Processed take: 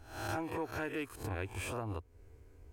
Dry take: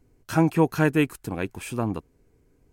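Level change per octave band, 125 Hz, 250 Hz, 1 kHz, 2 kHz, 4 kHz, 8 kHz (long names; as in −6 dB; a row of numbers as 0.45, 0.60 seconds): −15.0, −18.5, −11.0, −10.5, −8.5, −8.5 decibels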